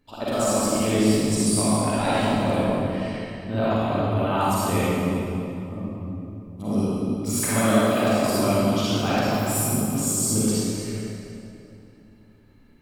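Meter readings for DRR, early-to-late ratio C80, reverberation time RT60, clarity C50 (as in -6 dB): -10.5 dB, -4.5 dB, 2.8 s, -8.0 dB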